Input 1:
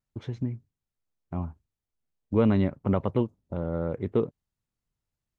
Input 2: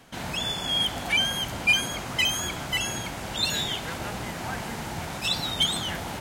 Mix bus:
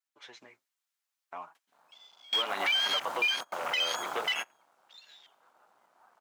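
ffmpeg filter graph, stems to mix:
-filter_complex "[0:a]highpass=f=900:p=1,flanger=delay=6.1:depth=5.8:regen=15:speed=0.64:shape=sinusoidal,volume=3dB,asplit=2[a][b];[1:a]afwtdn=0.0282,acompressor=threshold=-27dB:ratio=6,acrusher=bits=7:mode=log:mix=0:aa=0.000001,adelay=1550,volume=-1dB[c];[b]apad=whole_len=342081[d];[c][d]sidechaingate=range=-30dB:threshold=-57dB:ratio=16:detection=peak[e];[a][e]amix=inputs=2:normalize=0,highpass=880,dynaudnorm=f=120:g=5:m=8dB,alimiter=limit=-19.5dB:level=0:latency=1:release=103"

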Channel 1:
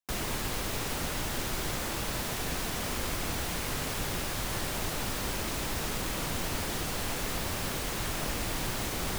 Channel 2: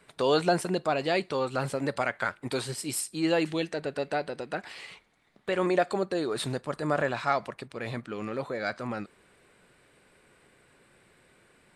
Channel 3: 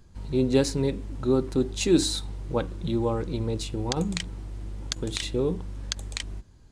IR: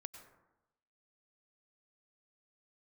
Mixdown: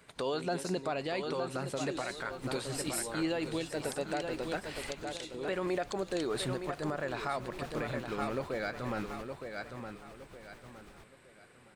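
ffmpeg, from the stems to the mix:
-filter_complex "[0:a]lowpass=f=2.7k:p=1,adelay=1850,volume=-10dB[a];[1:a]volume=-0.5dB,asplit=3[b][c][d];[c]volume=-9dB[e];[2:a]highpass=f=520:p=1,volume=-6dB,asplit=3[f][g][h];[g]volume=-5dB[i];[h]volume=-15.5dB[j];[d]apad=whole_len=486764[k];[a][k]sidechaingate=range=-10dB:threshold=-56dB:ratio=16:detection=peak[l];[l][f]amix=inputs=2:normalize=0,tremolo=f=9:d=0.6,acompressor=threshold=-41dB:ratio=3,volume=0dB[m];[3:a]atrim=start_sample=2205[n];[i][n]afir=irnorm=-1:irlink=0[o];[e][j]amix=inputs=2:normalize=0,aecho=0:1:915|1830|2745|3660|4575:1|0.33|0.109|0.0359|0.0119[p];[b][m][o][p]amix=inputs=4:normalize=0,alimiter=limit=-23.5dB:level=0:latency=1:release=351"

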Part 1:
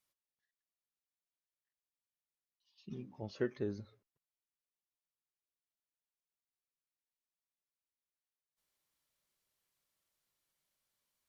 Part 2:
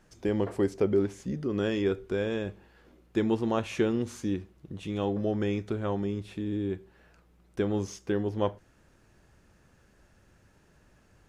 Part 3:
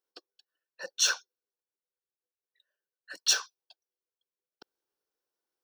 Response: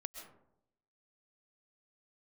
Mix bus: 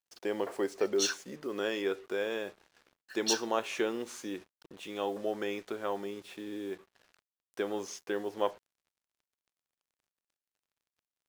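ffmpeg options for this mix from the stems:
-filter_complex "[0:a]bandpass=f=440:t=q:w=3.6:csg=0,volume=-17.5dB[a];[1:a]highpass=480,volume=0.5dB[b];[2:a]highpass=1.1k,volume=-6dB[c];[a][b][c]amix=inputs=3:normalize=0,acrusher=bits=8:mix=0:aa=0.5"

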